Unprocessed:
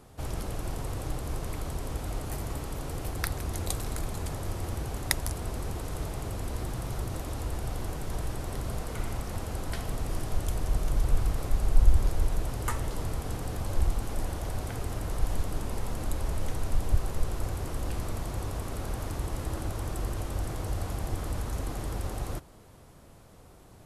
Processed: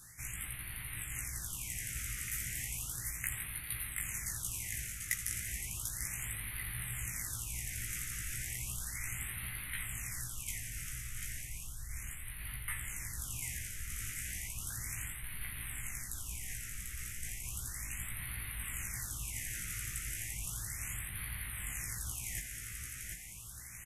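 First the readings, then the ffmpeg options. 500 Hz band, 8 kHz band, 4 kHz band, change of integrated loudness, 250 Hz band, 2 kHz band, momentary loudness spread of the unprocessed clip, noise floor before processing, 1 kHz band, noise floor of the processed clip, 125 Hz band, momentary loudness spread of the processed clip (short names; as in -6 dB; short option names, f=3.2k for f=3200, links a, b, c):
-27.0 dB, +4.5 dB, -4.0 dB, -5.5 dB, -17.0 dB, +1.5 dB, 6 LU, -52 dBFS, -16.5 dB, -46 dBFS, -13.0 dB, 5 LU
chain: -filter_complex "[0:a]aeval=exprs='clip(val(0),-1,0.266)':c=same,firequalizer=gain_entry='entry(130,0);entry(250,-12);entry(480,-24);entry(2000,14);entry(4200,-3);entry(6100,12)':delay=0.05:min_phase=1,areverse,acompressor=threshold=-35dB:ratio=5,areverse,lowshelf=f=160:g=-9,asplit=2[a][b];[b]adelay=17,volume=-3dB[c];[a][c]amix=inputs=2:normalize=0,aecho=1:1:742|1484|2226|2968|3710|4452|5194:0.596|0.31|0.161|0.0838|0.0436|0.0226|0.0118,afftfilt=real='re*(1-between(b*sr/1024,800*pow(6600/800,0.5+0.5*sin(2*PI*0.34*pts/sr))/1.41,800*pow(6600/800,0.5+0.5*sin(2*PI*0.34*pts/sr))*1.41))':imag='im*(1-between(b*sr/1024,800*pow(6600/800,0.5+0.5*sin(2*PI*0.34*pts/sr))/1.41,800*pow(6600/800,0.5+0.5*sin(2*PI*0.34*pts/sr))*1.41))':win_size=1024:overlap=0.75,volume=-1.5dB"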